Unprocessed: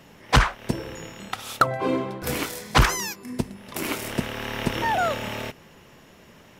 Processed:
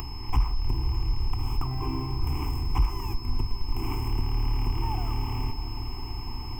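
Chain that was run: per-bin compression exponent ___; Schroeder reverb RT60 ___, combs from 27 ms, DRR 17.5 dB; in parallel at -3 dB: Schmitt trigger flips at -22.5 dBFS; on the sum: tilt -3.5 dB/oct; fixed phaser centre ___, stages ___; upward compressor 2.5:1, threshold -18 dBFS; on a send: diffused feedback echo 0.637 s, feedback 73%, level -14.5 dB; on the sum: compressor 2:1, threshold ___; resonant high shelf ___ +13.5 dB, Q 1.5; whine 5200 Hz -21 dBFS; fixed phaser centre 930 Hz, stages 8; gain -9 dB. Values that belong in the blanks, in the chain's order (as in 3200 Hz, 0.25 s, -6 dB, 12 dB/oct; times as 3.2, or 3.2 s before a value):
0.6, 0.78 s, 2600 Hz, 8, -15 dBFS, 7600 Hz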